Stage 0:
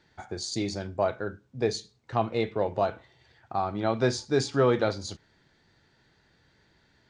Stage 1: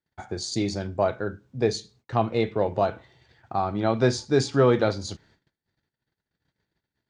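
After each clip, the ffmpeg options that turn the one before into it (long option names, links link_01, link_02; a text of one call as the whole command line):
ffmpeg -i in.wav -af "equalizer=frequency=140:width=0.39:gain=3,agate=range=-30dB:threshold=-59dB:ratio=16:detection=peak,volume=2dB" out.wav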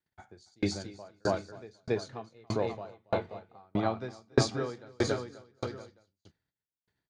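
ffmpeg -i in.wav -filter_complex "[0:a]aecho=1:1:280|532|758.8|962.9|1147:0.631|0.398|0.251|0.158|0.1,acrossover=split=680|2500[link_01][link_02][link_03];[link_02]crystalizer=i=3.5:c=0[link_04];[link_01][link_04][link_03]amix=inputs=3:normalize=0,aeval=exprs='val(0)*pow(10,-40*if(lt(mod(1.6*n/s,1),2*abs(1.6)/1000),1-mod(1.6*n/s,1)/(2*abs(1.6)/1000),(mod(1.6*n/s,1)-2*abs(1.6)/1000)/(1-2*abs(1.6)/1000))/20)':channel_layout=same" out.wav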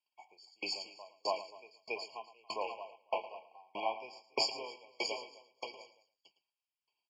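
ffmpeg -i in.wav -af "asuperpass=centerf=2400:order=4:qfactor=0.58,aecho=1:1:110:0.178,afftfilt=real='re*eq(mod(floor(b*sr/1024/1100),2),0)':imag='im*eq(mod(floor(b*sr/1024/1100),2),0)':win_size=1024:overlap=0.75,volume=6.5dB" out.wav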